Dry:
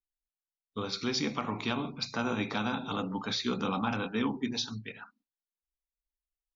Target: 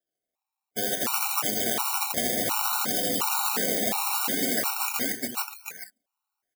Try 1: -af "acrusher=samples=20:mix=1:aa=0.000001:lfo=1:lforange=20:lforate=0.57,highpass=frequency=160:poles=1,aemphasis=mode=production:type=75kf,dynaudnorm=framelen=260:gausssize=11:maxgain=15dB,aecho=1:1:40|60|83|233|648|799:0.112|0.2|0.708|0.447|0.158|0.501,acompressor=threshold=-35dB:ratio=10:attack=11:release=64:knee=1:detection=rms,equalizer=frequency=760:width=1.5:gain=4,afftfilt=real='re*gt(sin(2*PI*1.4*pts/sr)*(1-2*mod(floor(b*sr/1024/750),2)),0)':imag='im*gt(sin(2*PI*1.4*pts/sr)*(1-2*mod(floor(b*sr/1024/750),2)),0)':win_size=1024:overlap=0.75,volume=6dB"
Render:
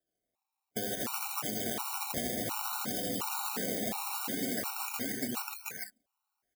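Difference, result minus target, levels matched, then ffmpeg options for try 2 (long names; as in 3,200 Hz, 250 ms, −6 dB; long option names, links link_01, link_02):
downward compressor: peak gain reduction +10 dB; 125 Hz band +7.0 dB
-af "acrusher=samples=20:mix=1:aa=0.000001:lfo=1:lforange=20:lforate=0.57,highpass=frequency=470:poles=1,aemphasis=mode=production:type=75kf,dynaudnorm=framelen=260:gausssize=11:maxgain=15dB,aecho=1:1:40|60|83|233|648|799:0.112|0.2|0.708|0.447|0.158|0.501,acompressor=threshold=-24.5dB:ratio=10:attack=11:release=64:knee=1:detection=rms,equalizer=frequency=760:width=1.5:gain=4,afftfilt=real='re*gt(sin(2*PI*1.4*pts/sr)*(1-2*mod(floor(b*sr/1024/750),2)),0)':imag='im*gt(sin(2*PI*1.4*pts/sr)*(1-2*mod(floor(b*sr/1024/750),2)),0)':win_size=1024:overlap=0.75,volume=6dB"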